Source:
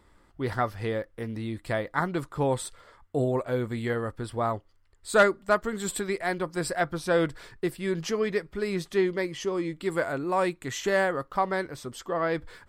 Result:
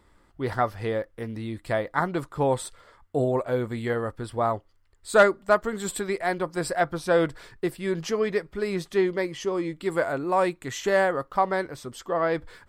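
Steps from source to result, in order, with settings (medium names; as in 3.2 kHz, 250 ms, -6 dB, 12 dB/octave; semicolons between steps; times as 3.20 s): dynamic bell 710 Hz, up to +4 dB, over -37 dBFS, Q 0.85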